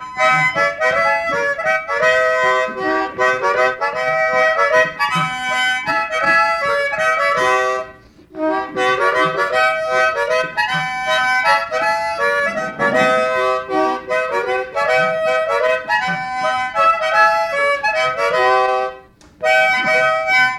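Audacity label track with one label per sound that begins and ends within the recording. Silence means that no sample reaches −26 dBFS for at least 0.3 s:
8.360000	18.970000	sound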